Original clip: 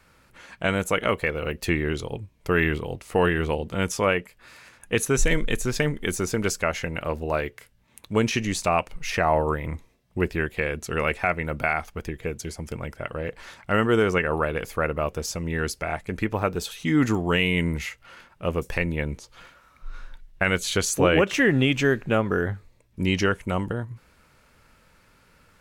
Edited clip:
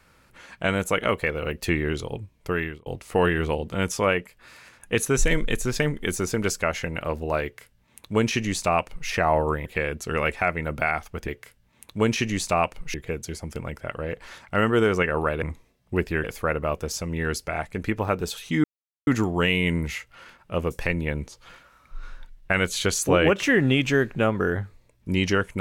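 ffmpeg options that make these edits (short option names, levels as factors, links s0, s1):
-filter_complex "[0:a]asplit=8[s0][s1][s2][s3][s4][s5][s6][s7];[s0]atrim=end=2.86,asetpts=PTS-STARTPTS,afade=t=out:st=2.35:d=0.51[s8];[s1]atrim=start=2.86:end=9.662,asetpts=PTS-STARTPTS,afade=t=in:d=0.004:c=hsin[s9];[s2]atrim=start=10.478:end=12.102[s10];[s3]atrim=start=7.428:end=9.092[s11];[s4]atrim=start=12.098:end=14.582[s12];[s5]atrim=start=9.658:end=10.482[s13];[s6]atrim=start=14.578:end=16.98,asetpts=PTS-STARTPTS,afade=t=out:st=2.398:d=0.004:c=hsin,apad=pad_dur=0.43[s14];[s7]atrim=start=16.98,asetpts=PTS-STARTPTS,afade=t=in:d=0.004:c=hsin[s15];[s8][s9]concat=n=2:v=0:a=1[s16];[s16][s10]acrossfade=d=0.004:c1=hsin:c2=hsin[s17];[s17][s11]acrossfade=d=0.004:c1=hsin:c2=hsin[s18];[s18][s12]acrossfade=d=0.004:c1=hsin:c2=hsin[s19];[s19][s13]acrossfade=d=0.004:c1=hsin:c2=hsin[s20];[s14][s15]concat=n=2:v=0:a=1[s21];[s20][s21]acrossfade=d=0.004:c1=hsin:c2=hsin"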